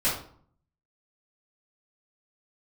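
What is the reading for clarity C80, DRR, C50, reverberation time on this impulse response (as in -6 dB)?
9.5 dB, -13.0 dB, 4.5 dB, 0.55 s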